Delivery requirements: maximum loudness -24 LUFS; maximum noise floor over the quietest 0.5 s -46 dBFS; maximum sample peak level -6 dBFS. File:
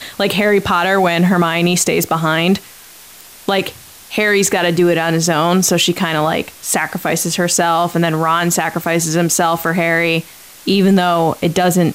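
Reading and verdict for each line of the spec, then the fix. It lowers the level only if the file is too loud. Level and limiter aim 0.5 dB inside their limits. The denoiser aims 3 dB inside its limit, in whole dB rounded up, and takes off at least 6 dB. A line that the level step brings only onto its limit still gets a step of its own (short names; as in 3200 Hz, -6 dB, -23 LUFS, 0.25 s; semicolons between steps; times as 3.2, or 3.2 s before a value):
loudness -14.5 LUFS: fail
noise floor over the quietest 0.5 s -39 dBFS: fail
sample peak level -4.0 dBFS: fail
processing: gain -10 dB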